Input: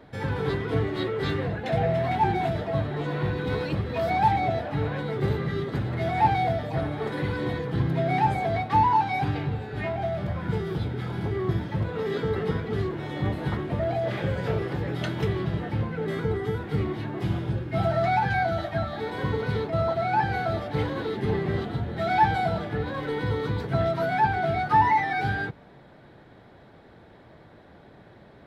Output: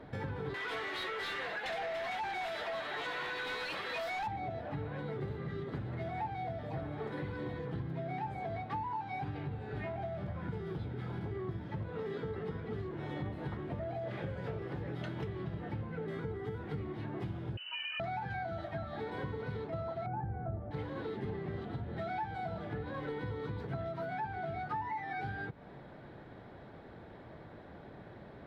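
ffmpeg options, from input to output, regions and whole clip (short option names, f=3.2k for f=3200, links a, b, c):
-filter_complex "[0:a]asettb=1/sr,asplit=3[a][b][c];[a]atrim=end=0.544[d];[b]atrim=start=0.54:end=4.27,asetpts=PTS-STARTPTS,afade=t=in:d=0.004:c=qsin,afade=t=out:st=3.726:d=0.004:c=qsin,aderivative,asplit=2[e][f];[f]highpass=f=720:p=1,volume=35dB,asoftclip=type=tanh:threshold=-14.5dB[g];[e][g]amix=inputs=2:normalize=0,lowpass=f=2.6k:p=1,volume=-6dB[h];[c]atrim=start=4.266[i];[d][h]acrossfade=d=0.004:c1=hsin:c2=qsin[j];[j][i]acrossfade=d=0.004:c1=qsin:c2=hsin,asettb=1/sr,asplit=3[k][l][m];[k]atrim=end=17.574[n];[l]atrim=start=17.57:end=18,asetpts=PTS-STARTPTS,afade=t=in:d=0.004:c=qsin,afade=t=out:st=0.426:d=0.004:c=qsin,acompressor=threshold=-29dB:ratio=2.5:attack=3.2:release=140:knee=1:detection=peak,lowpass=f=2.6k:t=q:w=0.5098,lowpass=f=2.6k:t=q:w=0.6013,lowpass=f=2.6k:t=q:w=0.9,lowpass=f=2.6k:t=q:w=2.563,afreqshift=-3100,equalizer=f=190:w=1.9:g=-12.5[o];[m]atrim=start=17.996[p];[n][o]acrossfade=d=0.004:c1=hsin:c2=qsin[q];[q][p]acrossfade=d=0.004:c1=qsin:c2=hsin,asettb=1/sr,asplit=3[r][s][t];[r]atrim=end=20.064[u];[s]atrim=start=20.06:end=20.71,asetpts=PTS-STARTPTS,afade=t=in:d=0.004:c=qsin,afade=t=out:st=0.646:d=0.004:c=qsin,lowpass=1.1k,aemphasis=mode=reproduction:type=bsi[v];[t]atrim=start=20.706[w];[u][v]acrossfade=d=0.004:c1=hsin:c2=qsin[x];[x][w]acrossfade=d=0.004:c1=qsin:c2=hsin,highshelf=f=4.3k:g=-10.5,acompressor=threshold=-37dB:ratio=6"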